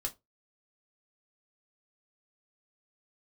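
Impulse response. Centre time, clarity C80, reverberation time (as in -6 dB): 7 ms, 29.5 dB, 0.20 s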